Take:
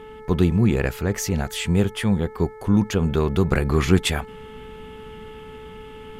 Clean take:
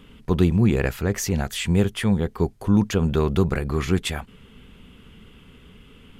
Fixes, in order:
hum removal 434.1 Hz, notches 5
level 0 dB, from 0:03.51 −4.5 dB

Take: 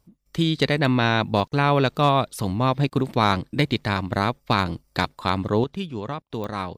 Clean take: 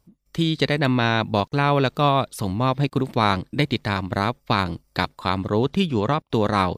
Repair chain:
clipped peaks rebuilt −8 dBFS
click removal
level 0 dB, from 0:05.64 +9 dB

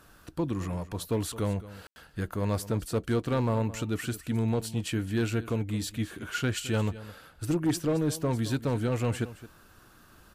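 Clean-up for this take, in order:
clipped peaks rebuilt −20.5 dBFS
ambience match 0:01.87–0:01.96
echo removal 217 ms −16.5 dB

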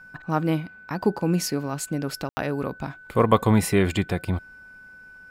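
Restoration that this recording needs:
notch filter 1,500 Hz, Q 30
ambience match 0:02.29–0:02.37

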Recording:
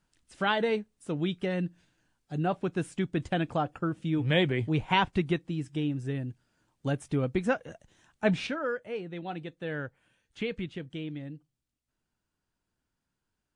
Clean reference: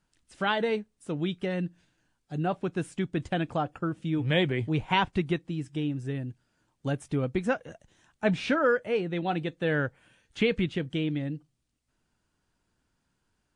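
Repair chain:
level correction +8 dB, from 0:08.47

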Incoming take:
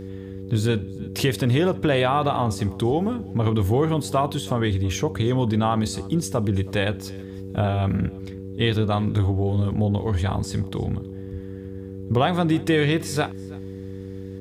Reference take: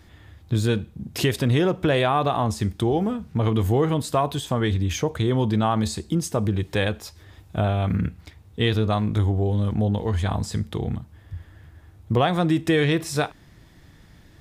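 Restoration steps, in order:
hum removal 96.3 Hz, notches 5
echo removal 325 ms −23.5 dB

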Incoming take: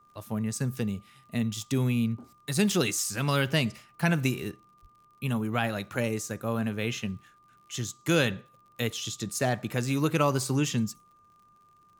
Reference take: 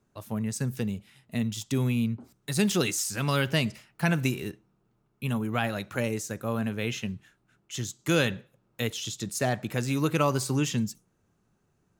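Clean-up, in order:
click removal
notch filter 1,200 Hz, Q 30
0:04.81–0:04.93: high-pass filter 140 Hz 24 dB per octave

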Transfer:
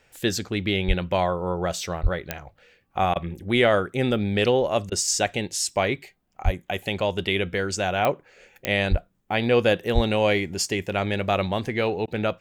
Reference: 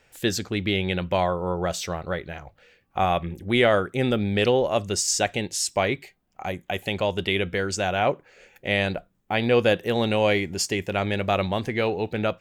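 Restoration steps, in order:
click removal
high-pass at the plosives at 0:00.87/0:02.02/0:06.44/0:08.90/0:09.94
repair the gap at 0:03.14/0:04.90/0:12.06, 16 ms

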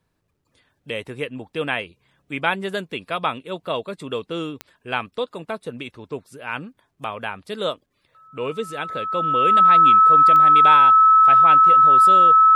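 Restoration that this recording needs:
click removal
notch filter 1,300 Hz, Q 30

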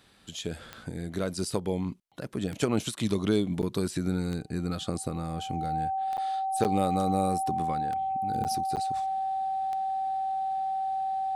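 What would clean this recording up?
click removal
notch filter 770 Hz, Q 30
repair the gap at 0:03.62/0:06.17/0:06.64/0:08.44/0:08.76, 8.6 ms

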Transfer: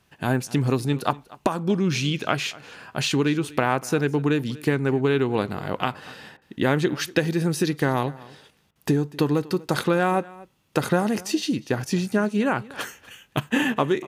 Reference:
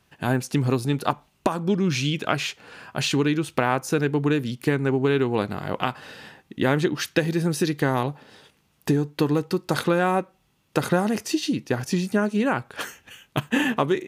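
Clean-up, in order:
repair the gap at 0:06.37/0:08.71, 45 ms
echo removal 242 ms −21 dB

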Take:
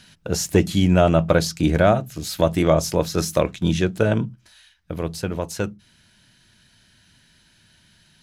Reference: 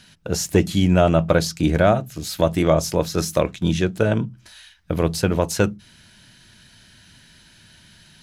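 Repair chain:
level correction +6.5 dB, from 0:04.35

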